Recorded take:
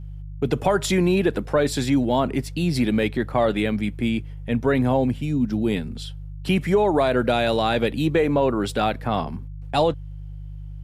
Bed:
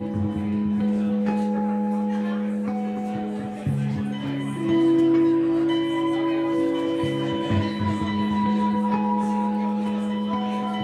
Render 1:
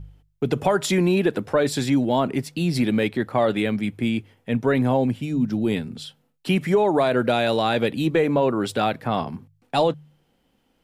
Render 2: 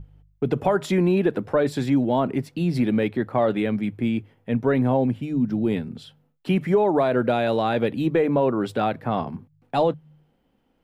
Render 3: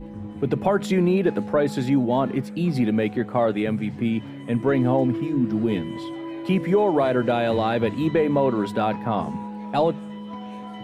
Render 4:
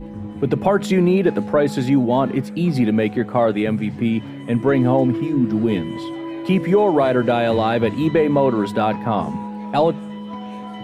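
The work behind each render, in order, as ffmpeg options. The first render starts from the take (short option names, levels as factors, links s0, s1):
-af "bandreject=f=50:t=h:w=4,bandreject=f=100:t=h:w=4,bandreject=f=150:t=h:w=4"
-af "equalizer=f=8200:t=o:w=2.8:g=-11.5,bandreject=f=50.76:t=h:w=4,bandreject=f=101.52:t=h:w=4,bandreject=f=152.28:t=h:w=4"
-filter_complex "[1:a]volume=0.316[s0];[0:a][s0]amix=inputs=2:normalize=0"
-af "volume=1.58"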